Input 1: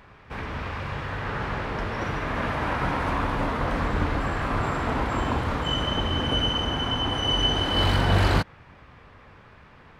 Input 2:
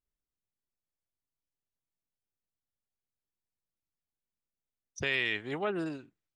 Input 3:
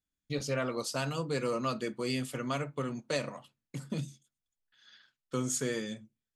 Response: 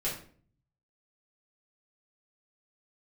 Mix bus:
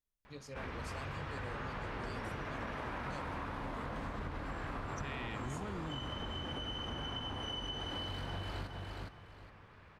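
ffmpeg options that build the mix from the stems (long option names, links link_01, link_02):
-filter_complex "[0:a]acompressor=threshold=-25dB:ratio=6,adelay=250,volume=-9dB,asplit=2[link_01][link_02];[link_02]volume=-7dB[link_03];[1:a]asubboost=boost=10.5:cutoff=170,acompressor=threshold=-31dB:ratio=6,volume=-4dB[link_04];[2:a]volume=-15.5dB[link_05];[link_03]aecho=0:1:413|826|1239|1652:1|0.22|0.0484|0.0106[link_06];[link_01][link_04][link_05][link_06]amix=inputs=4:normalize=0,acompressor=threshold=-37dB:ratio=6"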